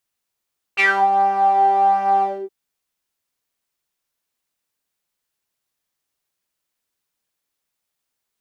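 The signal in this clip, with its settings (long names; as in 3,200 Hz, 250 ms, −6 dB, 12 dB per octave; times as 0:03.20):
subtractive patch with pulse-width modulation G4, interval −12 semitones, detune 10 cents, oscillator 2 level 0 dB, filter bandpass, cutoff 340 Hz, Q 7.4, filter envelope 3 octaves, filter decay 0.26 s, attack 29 ms, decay 0.27 s, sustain −10 dB, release 0.27 s, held 1.45 s, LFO 1.4 Hz, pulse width 21%, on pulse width 11%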